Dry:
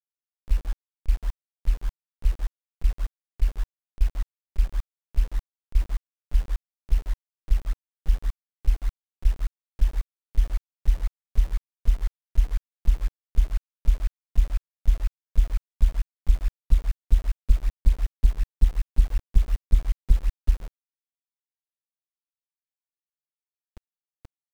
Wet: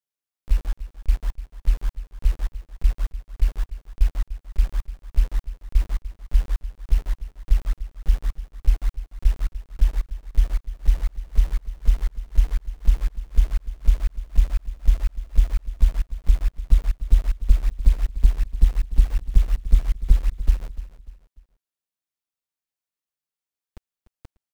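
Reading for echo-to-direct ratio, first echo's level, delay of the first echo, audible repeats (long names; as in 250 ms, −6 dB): −14.0 dB, −14.5 dB, 296 ms, 3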